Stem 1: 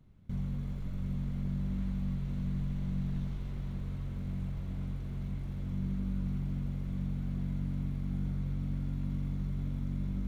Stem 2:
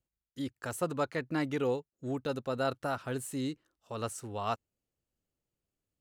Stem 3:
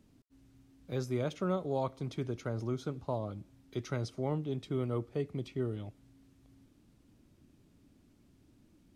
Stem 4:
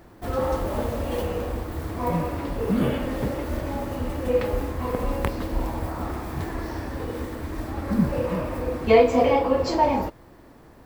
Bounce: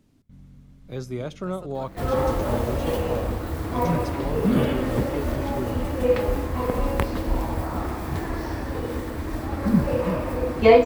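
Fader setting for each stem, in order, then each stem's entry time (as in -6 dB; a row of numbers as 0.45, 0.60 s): -13.0, -13.0, +2.5, +2.0 dB; 0.00, 0.80, 0.00, 1.75 s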